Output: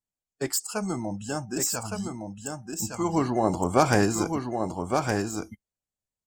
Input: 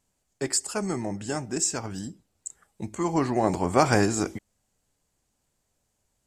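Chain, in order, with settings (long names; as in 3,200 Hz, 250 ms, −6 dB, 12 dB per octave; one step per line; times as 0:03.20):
phase distortion by the signal itself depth 0.065 ms
noise reduction from a noise print of the clip's start 21 dB
single-tap delay 1,164 ms −5 dB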